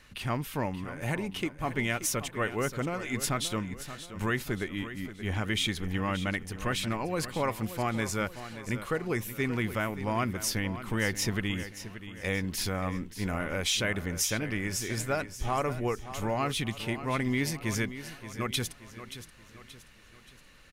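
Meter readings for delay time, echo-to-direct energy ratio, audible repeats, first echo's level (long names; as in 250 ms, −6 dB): 578 ms, −11.5 dB, 4, −12.5 dB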